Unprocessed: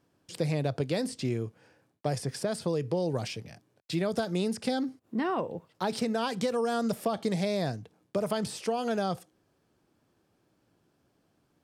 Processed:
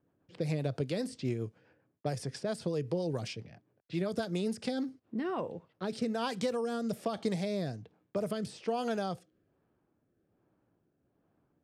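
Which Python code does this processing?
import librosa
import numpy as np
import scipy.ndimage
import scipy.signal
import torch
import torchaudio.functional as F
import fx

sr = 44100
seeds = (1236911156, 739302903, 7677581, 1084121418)

y = fx.rotary_switch(x, sr, hz=7.5, then_hz=1.2, switch_at_s=4.44)
y = fx.env_lowpass(y, sr, base_hz=1600.0, full_db=-29.0)
y = F.gain(torch.from_numpy(y), -2.0).numpy()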